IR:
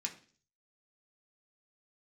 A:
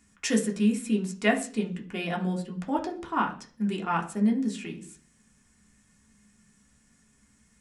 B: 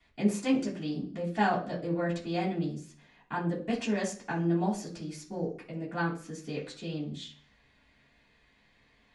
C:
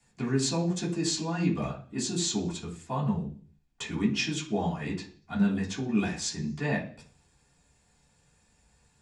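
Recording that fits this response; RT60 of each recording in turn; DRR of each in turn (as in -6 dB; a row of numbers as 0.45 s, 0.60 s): A; 0.45 s, 0.45 s, 0.45 s; 0.0 dB, -13.0 dB, -9.0 dB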